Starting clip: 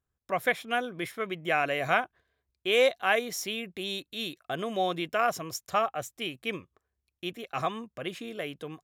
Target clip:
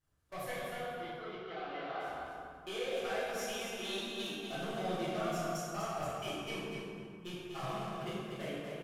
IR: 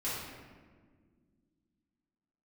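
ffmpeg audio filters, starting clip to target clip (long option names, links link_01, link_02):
-filter_complex "[0:a]aeval=exprs='val(0)+0.5*0.0168*sgn(val(0))':channel_layout=same,agate=range=-39dB:threshold=-31dB:ratio=16:detection=peak,asettb=1/sr,asplit=3[link_01][link_02][link_03];[link_01]atrim=end=3.634[link_04];[link_02]atrim=start=3.63:end=4.22,asetpts=PTS-STARTPTS,afade=type=in:duration=0.004:curve=qsin,afade=type=out:start_time=0.586:duration=0.004:curve=qsin,equalizer=frequency=1400:width=0.3:gain=10[link_05];[link_03]atrim=start=4.216[link_06];[link_04][link_05]acrossfade=duration=0.004:curve1=hsin:curve2=qsin[link_07];[link_07][link_06]acrossfade=duration=0.004:curve1=qsin:curve2=hsin,acompressor=threshold=-41dB:ratio=3,asoftclip=type=tanh:threshold=-37.5dB,asettb=1/sr,asplit=3[link_08][link_09][link_10];[link_08]atrim=end=0.554[link_11];[link_09]atrim=start=0.55:end=2,asetpts=PTS-STARTPTS,afade=type=in:duration=0.004:curve=qsin,afade=type=out:start_time=1.446:duration=0.004:curve=qsin,highpass=420,equalizer=frequency=590:width_type=q:width=4:gain=-7,equalizer=frequency=1700:width_type=q:width=4:gain=-7,equalizer=frequency=2500:width_type=q:width=4:gain=-10,lowpass=frequency=3600:width=0.5412,lowpass=frequency=3600:width=1.3066[link_12];[link_10]atrim=start=1.996[link_13];[link_11][link_12]acrossfade=duration=0.004:curve1=hsin:curve2=qsin[link_14];[link_14][link_13]acrossfade=duration=0.004:curve1=qsin:curve2=hsin,aecho=1:1:243|486|729:0.501|0.0902|0.0162[link_15];[1:a]atrim=start_sample=2205,asetrate=26901,aresample=44100[link_16];[link_15][link_16]afir=irnorm=-1:irlink=0,volume=-3.5dB"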